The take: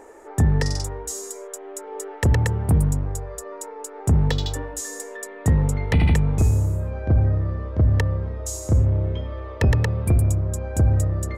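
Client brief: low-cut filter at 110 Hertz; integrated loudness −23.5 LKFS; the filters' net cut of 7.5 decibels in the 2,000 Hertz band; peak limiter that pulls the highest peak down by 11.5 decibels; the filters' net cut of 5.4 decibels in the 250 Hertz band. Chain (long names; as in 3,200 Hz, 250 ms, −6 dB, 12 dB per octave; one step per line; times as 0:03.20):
high-pass filter 110 Hz
parametric band 250 Hz −8.5 dB
parametric band 2,000 Hz −8.5 dB
level +8 dB
brickwall limiter −14 dBFS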